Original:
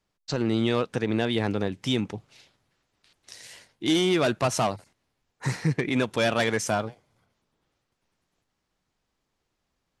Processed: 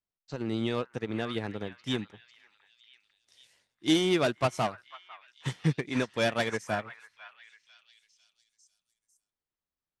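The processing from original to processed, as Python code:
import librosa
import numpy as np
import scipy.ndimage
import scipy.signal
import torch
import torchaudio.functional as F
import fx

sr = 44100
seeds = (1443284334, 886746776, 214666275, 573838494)

y = fx.echo_stepped(x, sr, ms=499, hz=1400.0, octaves=0.7, feedback_pct=70, wet_db=-1.5)
y = fx.upward_expand(y, sr, threshold_db=-33.0, expansion=2.5)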